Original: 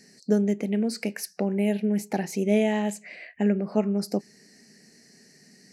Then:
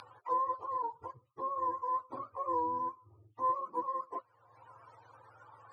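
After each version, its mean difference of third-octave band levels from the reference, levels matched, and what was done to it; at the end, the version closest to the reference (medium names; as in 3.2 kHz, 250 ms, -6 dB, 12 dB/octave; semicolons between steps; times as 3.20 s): 12.5 dB: spectrum inverted on a logarithmic axis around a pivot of 460 Hz; upward compressor, threshold -29 dBFS; frequency weighting ITU-R 468; trim -7 dB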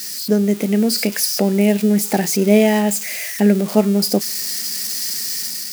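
8.0 dB: zero-crossing glitches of -26.5 dBFS; dynamic bell 4.9 kHz, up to +7 dB, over -54 dBFS, Q 7.9; level rider gain up to 4.5 dB; trim +5 dB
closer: second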